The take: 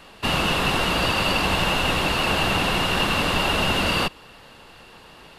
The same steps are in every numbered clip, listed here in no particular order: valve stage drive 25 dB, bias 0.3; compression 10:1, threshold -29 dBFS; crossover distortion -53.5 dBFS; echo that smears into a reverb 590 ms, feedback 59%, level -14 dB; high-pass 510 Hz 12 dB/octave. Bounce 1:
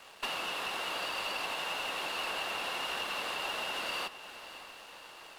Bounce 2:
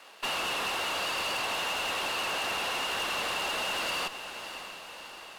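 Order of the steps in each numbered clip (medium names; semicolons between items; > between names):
compression > high-pass > valve stage > crossover distortion > echo that smears into a reverb; crossover distortion > high-pass > valve stage > echo that smears into a reverb > compression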